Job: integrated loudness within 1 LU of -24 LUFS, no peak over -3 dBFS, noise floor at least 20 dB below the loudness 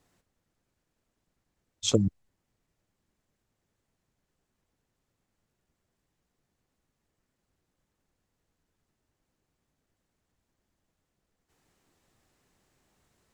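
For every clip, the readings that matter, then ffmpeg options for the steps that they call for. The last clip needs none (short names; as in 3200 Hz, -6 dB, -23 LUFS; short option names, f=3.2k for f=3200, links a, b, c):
loudness -28.0 LUFS; peak -8.0 dBFS; loudness target -24.0 LUFS
-> -af "volume=4dB"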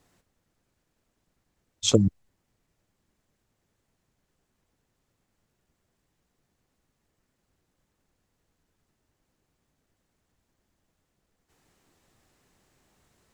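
loudness -24.0 LUFS; peak -4.0 dBFS; noise floor -79 dBFS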